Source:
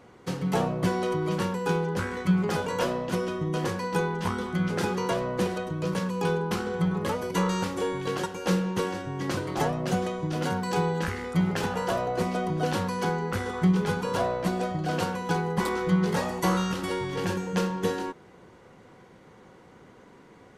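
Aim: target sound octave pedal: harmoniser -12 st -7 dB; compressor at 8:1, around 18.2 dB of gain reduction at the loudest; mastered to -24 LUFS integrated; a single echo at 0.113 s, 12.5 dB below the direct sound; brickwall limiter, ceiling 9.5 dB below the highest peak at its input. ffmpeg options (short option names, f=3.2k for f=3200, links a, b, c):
-filter_complex "[0:a]acompressor=threshold=-37dB:ratio=8,alimiter=level_in=11dB:limit=-24dB:level=0:latency=1,volume=-11dB,aecho=1:1:113:0.237,asplit=2[a][b];[b]asetrate=22050,aresample=44100,atempo=2,volume=-7dB[c];[a][c]amix=inputs=2:normalize=0,volume=19dB"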